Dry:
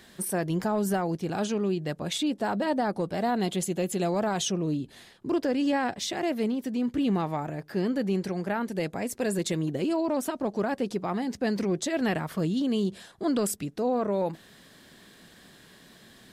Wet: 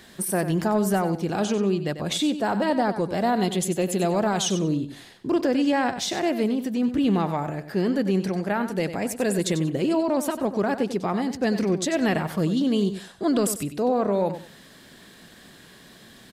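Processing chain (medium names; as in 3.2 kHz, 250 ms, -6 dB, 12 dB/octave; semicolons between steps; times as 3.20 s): feedback delay 94 ms, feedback 21%, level -11 dB; trim +4 dB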